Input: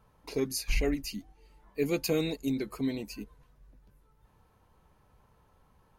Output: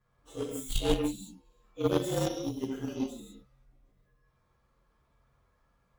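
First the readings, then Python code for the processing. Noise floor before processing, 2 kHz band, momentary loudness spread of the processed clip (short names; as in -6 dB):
-66 dBFS, -7.0 dB, 18 LU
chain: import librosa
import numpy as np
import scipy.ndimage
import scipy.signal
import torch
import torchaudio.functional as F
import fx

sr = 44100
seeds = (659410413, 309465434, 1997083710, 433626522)

y = fx.partial_stretch(x, sr, pct=115)
y = fx.rev_gated(y, sr, seeds[0], gate_ms=210, shape='flat', drr_db=-5.0)
y = fx.cheby_harmonics(y, sr, harmonics=(3,), levels_db=(-14,), full_scale_db=-15.0)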